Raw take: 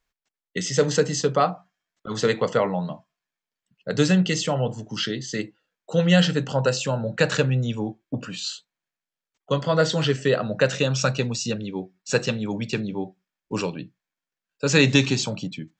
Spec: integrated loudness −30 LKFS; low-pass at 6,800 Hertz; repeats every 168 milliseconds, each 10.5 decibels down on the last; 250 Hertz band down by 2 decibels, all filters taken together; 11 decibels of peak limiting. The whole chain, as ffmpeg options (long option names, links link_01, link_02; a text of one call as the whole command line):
ffmpeg -i in.wav -af "lowpass=6800,equalizer=frequency=250:width_type=o:gain=-3,alimiter=limit=-15dB:level=0:latency=1,aecho=1:1:168|336|504:0.299|0.0896|0.0269,volume=-3dB" out.wav